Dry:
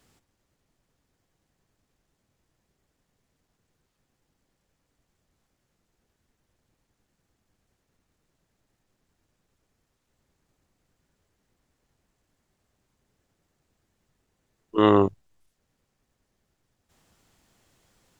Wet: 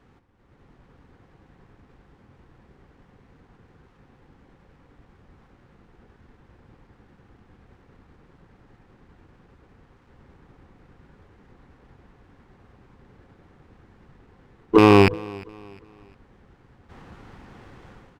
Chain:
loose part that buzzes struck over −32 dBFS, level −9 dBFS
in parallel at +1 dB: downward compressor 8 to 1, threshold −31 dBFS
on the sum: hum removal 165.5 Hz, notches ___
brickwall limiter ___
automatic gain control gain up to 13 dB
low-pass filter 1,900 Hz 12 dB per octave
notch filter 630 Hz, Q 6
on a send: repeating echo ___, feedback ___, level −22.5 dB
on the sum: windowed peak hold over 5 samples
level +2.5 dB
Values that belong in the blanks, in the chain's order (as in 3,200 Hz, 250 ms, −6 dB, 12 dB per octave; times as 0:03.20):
4, −14.5 dBFS, 354 ms, 37%